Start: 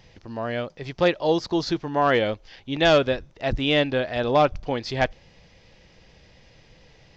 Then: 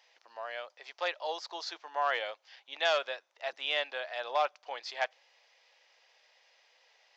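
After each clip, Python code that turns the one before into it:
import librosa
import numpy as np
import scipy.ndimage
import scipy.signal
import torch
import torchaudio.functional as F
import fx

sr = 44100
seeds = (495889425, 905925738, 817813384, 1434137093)

y = scipy.signal.sosfilt(scipy.signal.butter(4, 660.0, 'highpass', fs=sr, output='sos'), x)
y = F.gain(torch.from_numpy(y), -7.5).numpy()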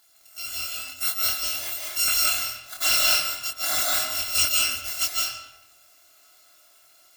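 y = fx.bit_reversed(x, sr, seeds[0], block=256)
y = fx.doubler(y, sr, ms=24.0, db=-2.5)
y = fx.rev_freeverb(y, sr, rt60_s=0.95, hf_ratio=0.8, predelay_ms=120, drr_db=-3.0)
y = F.gain(torch.from_numpy(y), 4.5).numpy()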